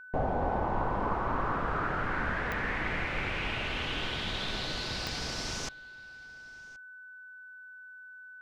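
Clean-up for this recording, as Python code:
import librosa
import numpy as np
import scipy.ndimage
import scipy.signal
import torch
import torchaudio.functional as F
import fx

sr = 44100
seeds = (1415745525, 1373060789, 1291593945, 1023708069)

y = fx.fix_declick_ar(x, sr, threshold=10.0)
y = fx.notch(y, sr, hz=1500.0, q=30.0)
y = fx.fix_echo_inverse(y, sr, delay_ms=1074, level_db=-23.5)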